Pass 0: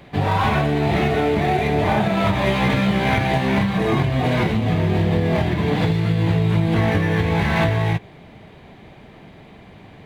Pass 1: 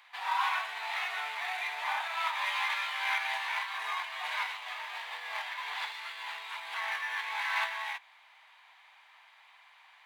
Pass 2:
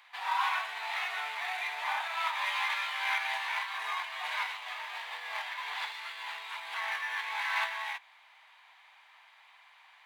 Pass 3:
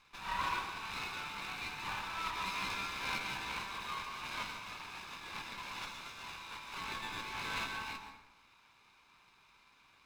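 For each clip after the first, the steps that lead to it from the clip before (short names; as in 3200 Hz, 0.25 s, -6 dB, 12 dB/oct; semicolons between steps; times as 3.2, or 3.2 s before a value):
Chebyshev high-pass 930 Hz, order 4; gain -6.5 dB
nothing audible
minimum comb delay 0.79 ms; reverb RT60 0.95 s, pre-delay 0.113 s, DRR 6.5 dB; gain -5.5 dB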